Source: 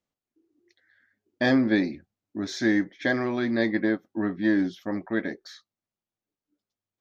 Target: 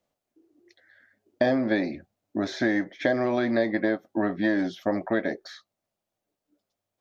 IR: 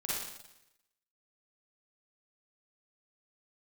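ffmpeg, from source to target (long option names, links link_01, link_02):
-filter_complex "[0:a]equalizer=frequency=630:width_type=o:width=0.72:gain=10.5,acrossover=split=570|3400[link_01][link_02][link_03];[link_01]acompressor=threshold=-30dB:ratio=4[link_04];[link_02]acompressor=threshold=-33dB:ratio=4[link_05];[link_03]acompressor=threshold=-53dB:ratio=4[link_06];[link_04][link_05][link_06]amix=inputs=3:normalize=0,volume=5dB"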